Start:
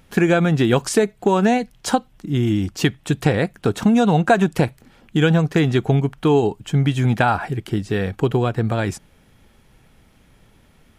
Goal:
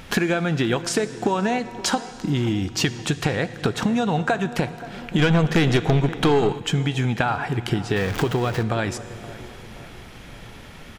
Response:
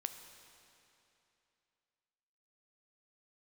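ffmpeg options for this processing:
-filter_complex "[0:a]asettb=1/sr,asplit=3[link_01][link_02][link_03];[link_01]atrim=end=7.964[link_04];[link_02]atrim=start=7.96:end=8.63,asetpts=PTS-STARTPTS,afade=type=in:duration=0.004:curve=qsin,afade=type=out:start_time=0.666:duration=0.004:curve=qsin,aeval=exprs='val(0)+0.5*0.0531*sgn(val(0))':channel_layout=same[link_05];[link_03]atrim=start=8.626[link_06];[link_04][link_05]acrossfade=duration=0.004:curve1=hsin:curve2=qsin[link_07];[link_07][link_06]acrossfade=duration=0.004:curve1=qsin:curve2=hsin,tiltshelf=frequency=690:gain=-3,acompressor=threshold=-34dB:ratio=6,asplit=2[link_08][link_09];[link_09]adelay=525,lowpass=frequency=1600:poles=1,volume=-17dB,asplit=2[link_10][link_11];[link_11]adelay=525,lowpass=frequency=1600:poles=1,volume=0.54,asplit=2[link_12][link_13];[link_13]adelay=525,lowpass=frequency=1600:poles=1,volume=0.54,asplit=2[link_14][link_15];[link_15]adelay=525,lowpass=frequency=1600:poles=1,volume=0.54,asplit=2[link_16][link_17];[link_17]adelay=525,lowpass=frequency=1600:poles=1,volume=0.54[link_18];[link_08][link_10][link_12][link_14][link_16][link_18]amix=inputs=6:normalize=0,asplit=2[link_19][link_20];[1:a]atrim=start_sample=2205,lowpass=7500[link_21];[link_20][link_21]afir=irnorm=-1:irlink=0,volume=2.5dB[link_22];[link_19][link_22]amix=inputs=2:normalize=0,asplit=3[link_23][link_24][link_25];[link_23]afade=type=out:start_time=5.18:duration=0.02[link_26];[link_24]aeval=exprs='0.178*(cos(1*acos(clip(val(0)/0.178,-1,1)))-cos(1*PI/2))+0.0316*(cos(5*acos(clip(val(0)/0.178,-1,1)))-cos(5*PI/2))+0.0158*(cos(8*acos(clip(val(0)/0.178,-1,1)))-cos(8*PI/2))':channel_layout=same,afade=type=in:start_time=5.18:duration=0.02,afade=type=out:start_time=6.58:duration=0.02[link_27];[link_25]afade=type=in:start_time=6.58:duration=0.02[link_28];[link_26][link_27][link_28]amix=inputs=3:normalize=0,volume=7dB"

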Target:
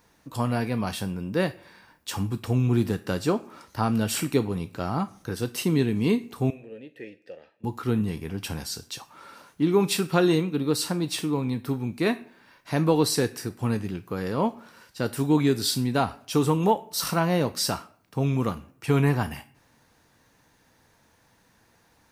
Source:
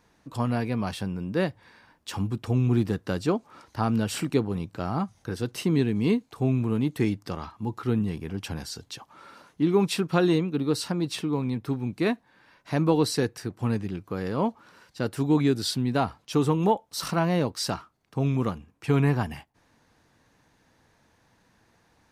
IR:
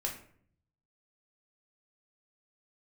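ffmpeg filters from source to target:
-filter_complex "[0:a]asettb=1/sr,asplit=3[link_01][link_02][link_03];[link_01]atrim=end=6.504[link_04];[link_02]atrim=start=6.5:end=7.64,asetpts=PTS-STARTPTS,afade=type=in:duration=0.004:curve=qsin,afade=type=out:start_time=1.136:duration=0.004:curve=qsin,asplit=3[link_05][link_06][link_07];[link_05]bandpass=frequency=530:width_type=q:width=8,volume=0dB[link_08];[link_06]bandpass=frequency=1840:width_type=q:width=8,volume=-6dB[link_09];[link_07]bandpass=frequency=2480:width_type=q:width=8,volume=-9dB[link_10];[link_08][link_09][link_10]amix=inputs=3:normalize=0[link_11];[link_03]atrim=start=7.636[link_12];[link_04][link_11]acrossfade=duration=0.004:curve1=hsin:curve2=qsin[link_13];[link_13][link_12]acrossfade=duration=0.004:curve1=qsin:curve2=hsin,asplit=2[link_14][link_15];[link_15]aemphasis=mode=production:type=riaa[link_16];[1:a]atrim=start_sample=2205[link_17];[link_16][link_17]afir=irnorm=-1:irlink=0,volume=-11dB[link_18];[link_14][link_18]amix=inputs=2:normalize=0"

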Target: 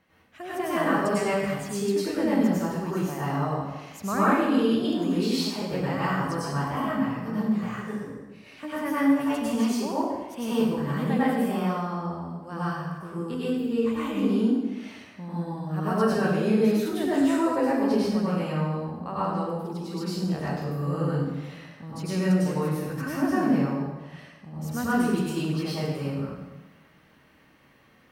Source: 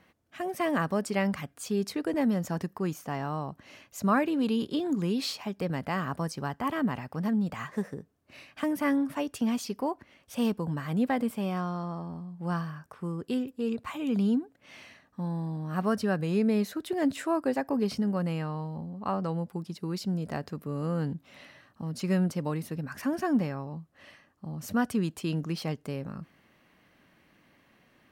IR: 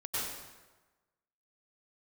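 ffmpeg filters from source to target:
-filter_complex "[0:a]asplit=3[link_01][link_02][link_03];[link_01]afade=type=out:start_time=6.64:duration=0.02[link_04];[link_02]flanger=delay=15.5:depth=3.5:speed=2.1,afade=type=in:start_time=6.64:duration=0.02,afade=type=out:start_time=8.84:duration=0.02[link_05];[link_03]afade=type=in:start_time=8.84:duration=0.02[link_06];[link_04][link_05][link_06]amix=inputs=3:normalize=0[link_07];[1:a]atrim=start_sample=2205[link_08];[link_07][link_08]afir=irnorm=-1:irlink=0"

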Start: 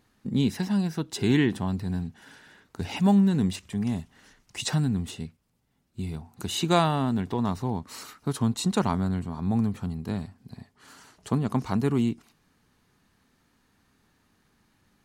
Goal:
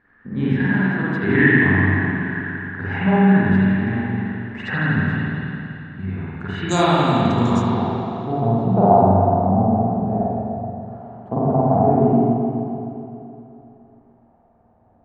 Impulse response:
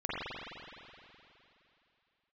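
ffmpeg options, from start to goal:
-filter_complex "[0:a]asetnsamples=nb_out_samples=441:pad=0,asendcmd='6.69 lowpass f 6900;7.74 lowpass f 700',lowpass=frequency=1700:width_type=q:width=8[link_01];[1:a]atrim=start_sample=2205[link_02];[link_01][link_02]afir=irnorm=-1:irlink=0"

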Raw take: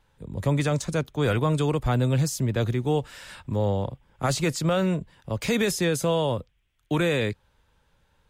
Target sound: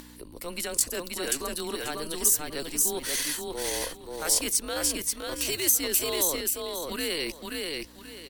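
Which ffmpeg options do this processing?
ffmpeg -i in.wav -af "areverse,acompressor=threshold=-36dB:ratio=6,areverse,afreqshift=-130,aecho=1:1:533|1066|1599:0.708|0.156|0.0343,asetrate=53981,aresample=44100,atempo=0.816958,aeval=exprs='val(0)+0.00316*(sin(2*PI*60*n/s)+sin(2*PI*2*60*n/s)/2+sin(2*PI*3*60*n/s)/3+sin(2*PI*4*60*n/s)/4+sin(2*PI*5*60*n/s)/5)':channel_layout=same,crystalizer=i=5.5:c=0,acompressor=mode=upward:threshold=-40dB:ratio=2.5,lowshelf=frequency=190:width_type=q:width=1.5:gain=-10.5,volume=4dB" out.wav

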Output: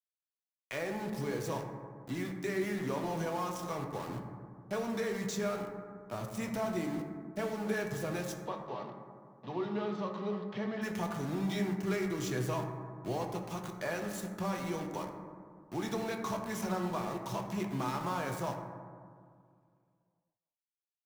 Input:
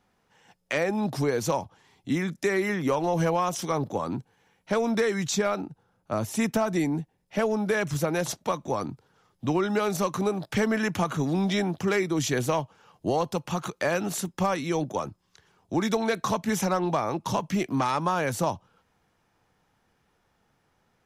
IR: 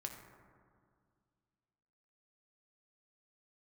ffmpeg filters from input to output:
-filter_complex "[0:a]aeval=exprs='val(0)*gte(abs(val(0)),0.0266)':channel_layout=same,asplit=3[link_01][link_02][link_03];[link_01]afade=type=out:start_time=8.35:duration=0.02[link_04];[link_02]highpass=frequency=160:width=0.5412,highpass=frequency=160:width=1.3066,equalizer=frequency=300:width_type=q:width=4:gain=-9,equalizer=frequency=1500:width_type=q:width=4:gain=-7,equalizer=frequency=2300:width_type=q:width=4:gain=-6,lowpass=frequency=3900:width=0.5412,lowpass=frequency=3900:width=1.3066,afade=type=in:start_time=8.35:duration=0.02,afade=type=out:start_time=10.81:duration=0.02[link_05];[link_03]afade=type=in:start_time=10.81:duration=0.02[link_06];[link_04][link_05][link_06]amix=inputs=3:normalize=0[link_07];[1:a]atrim=start_sample=2205[link_08];[link_07][link_08]afir=irnorm=-1:irlink=0,volume=-7.5dB"

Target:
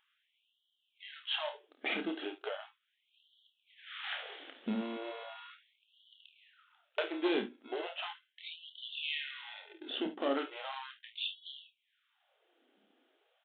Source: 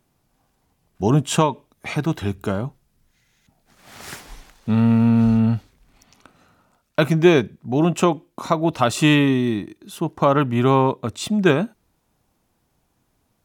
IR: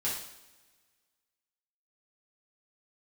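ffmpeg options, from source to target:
-filter_complex "[0:a]asplit=2[link_01][link_02];[link_02]acrusher=samples=37:mix=1:aa=0.000001,volume=-7.5dB[link_03];[link_01][link_03]amix=inputs=2:normalize=0,equalizer=frequency=125:width_type=o:width=0.33:gain=5,equalizer=frequency=1000:width_type=o:width=0.33:gain=-11,equalizer=frequency=3150:width_type=o:width=0.33:gain=7,aresample=8000,asoftclip=type=hard:threshold=-10dB,aresample=44100,acompressor=threshold=-30dB:ratio=4,bandreject=frequency=60:width_type=h:width=6,bandreject=frequency=120:width_type=h:width=6,bandreject=frequency=180:width_type=h:width=6,bandreject=frequency=240:width_type=h:width=6,bandreject=frequency=300:width_type=h:width=6,aecho=1:1:29|53|72:0.422|0.251|0.168,afftfilt=real='re*gte(b*sr/1024,210*pow(2900/210,0.5+0.5*sin(2*PI*0.37*pts/sr)))':imag='im*gte(b*sr/1024,210*pow(2900/210,0.5+0.5*sin(2*PI*0.37*pts/sr)))':win_size=1024:overlap=0.75,volume=-1.5dB"

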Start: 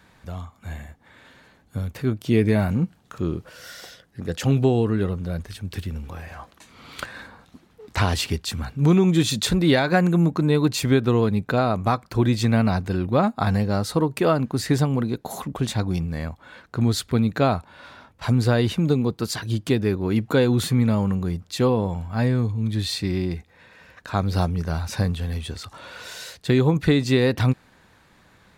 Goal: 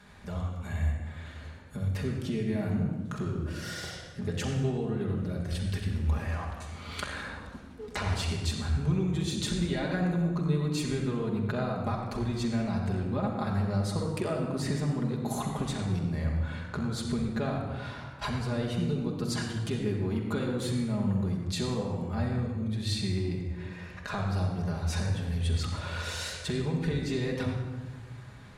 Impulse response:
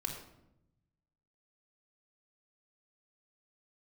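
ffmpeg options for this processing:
-filter_complex "[0:a]acompressor=threshold=-31dB:ratio=6[link_01];[1:a]atrim=start_sample=2205,asetrate=22491,aresample=44100[link_02];[link_01][link_02]afir=irnorm=-1:irlink=0,volume=-3.5dB"

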